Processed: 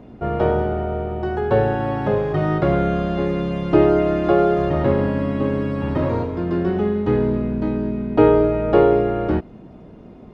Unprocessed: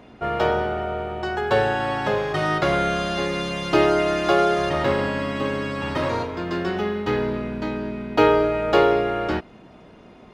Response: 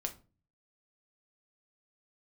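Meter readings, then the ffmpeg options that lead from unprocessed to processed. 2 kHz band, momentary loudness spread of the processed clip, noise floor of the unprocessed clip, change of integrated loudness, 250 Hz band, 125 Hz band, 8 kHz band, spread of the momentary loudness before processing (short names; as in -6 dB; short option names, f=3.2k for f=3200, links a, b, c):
-6.0 dB, 8 LU, -47 dBFS, +3.0 dB, +6.0 dB, +8.0 dB, under -15 dB, 9 LU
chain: -filter_complex "[0:a]acrossover=split=3500[a][b];[b]acompressor=threshold=-50dB:ratio=4:attack=1:release=60[c];[a][c]amix=inputs=2:normalize=0,tiltshelf=f=730:g=8.5"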